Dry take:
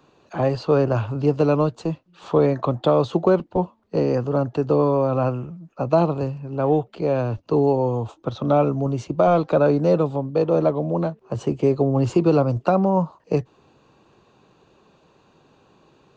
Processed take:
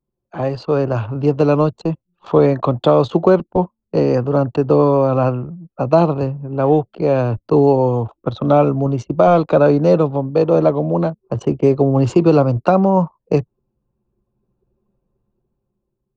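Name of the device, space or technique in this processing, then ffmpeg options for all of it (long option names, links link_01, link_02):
voice memo with heavy noise removal: -af "anlmdn=1,dynaudnorm=framelen=210:gausssize=11:maxgain=11.5dB"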